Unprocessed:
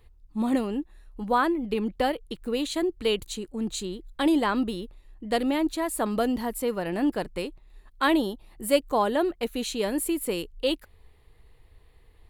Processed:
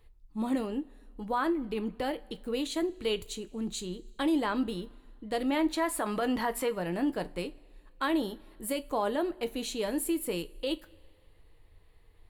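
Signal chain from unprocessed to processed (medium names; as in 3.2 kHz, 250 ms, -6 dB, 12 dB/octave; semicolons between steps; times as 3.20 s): 5.49–6.68 s: peaking EQ 1.5 kHz +6 dB -> +14 dB 3 oct; peak limiter -17 dBFS, peak gain reduction 11 dB; two-slope reverb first 0.23 s, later 2 s, from -22 dB, DRR 9.5 dB; trim -4.5 dB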